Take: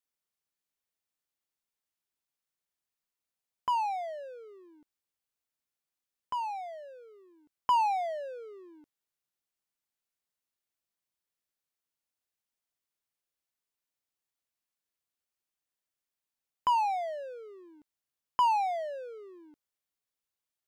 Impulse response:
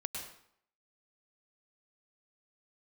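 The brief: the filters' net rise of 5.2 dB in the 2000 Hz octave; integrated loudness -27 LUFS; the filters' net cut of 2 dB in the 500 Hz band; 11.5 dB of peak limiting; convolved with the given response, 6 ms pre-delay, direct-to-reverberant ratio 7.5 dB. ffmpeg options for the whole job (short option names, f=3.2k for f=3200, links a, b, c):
-filter_complex "[0:a]equalizer=f=500:t=o:g=-3.5,equalizer=f=2k:t=o:g=7,alimiter=level_in=3.5dB:limit=-24dB:level=0:latency=1,volume=-3.5dB,asplit=2[a][b];[1:a]atrim=start_sample=2205,adelay=6[c];[b][c]afir=irnorm=-1:irlink=0,volume=-8dB[d];[a][d]amix=inputs=2:normalize=0,volume=8.5dB"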